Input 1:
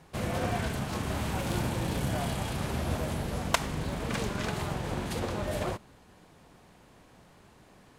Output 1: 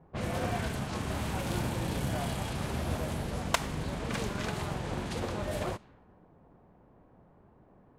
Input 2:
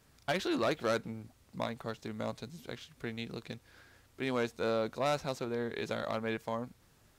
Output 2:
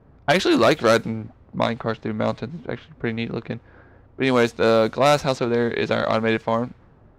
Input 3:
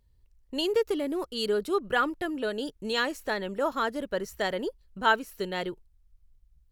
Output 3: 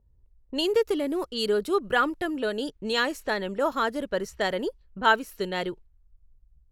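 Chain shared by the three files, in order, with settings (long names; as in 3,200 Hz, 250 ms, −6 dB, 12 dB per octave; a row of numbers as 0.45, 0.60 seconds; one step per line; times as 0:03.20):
low-pass that shuts in the quiet parts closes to 790 Hz, open at −28 dBFS
normalise the peak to −9 dBFS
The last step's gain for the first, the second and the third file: −1.5, +14.5, +2.5 decibels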